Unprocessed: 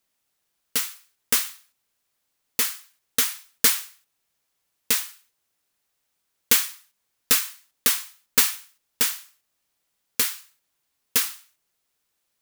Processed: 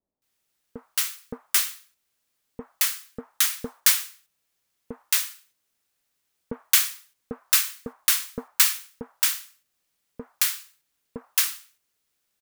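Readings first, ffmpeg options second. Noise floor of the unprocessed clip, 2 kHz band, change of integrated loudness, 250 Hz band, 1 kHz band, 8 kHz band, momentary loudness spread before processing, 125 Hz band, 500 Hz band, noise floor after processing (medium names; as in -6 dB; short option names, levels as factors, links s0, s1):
-76 dBFS, -0.5 dB, 0.0 dB, 0.0 dB, -1.5 dB, 0.0 dB, 14 LU, 0.0 dB, -1.0 dB, -76 dBFS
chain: -filter_complex "[0:a]acrossover=split=820[s0][s1];[s1]adelay=220[s2];[s0][s2]amix=inputs=2:normalize=0"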